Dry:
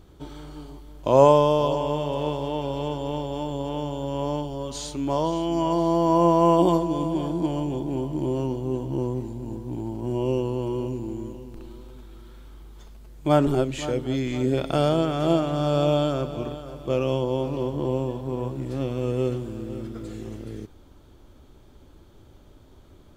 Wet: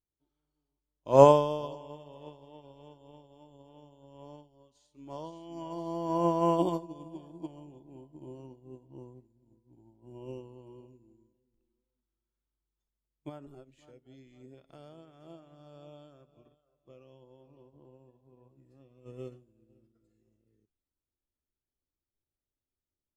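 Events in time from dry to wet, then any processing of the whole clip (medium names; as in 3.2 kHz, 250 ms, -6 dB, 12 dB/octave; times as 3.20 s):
13.29–19.06 s: compression 2:1, threshold -27 dBFS
whole clip: spectral noise reduction 8 dB; upward expansion 2.5:1, over -36 dBFS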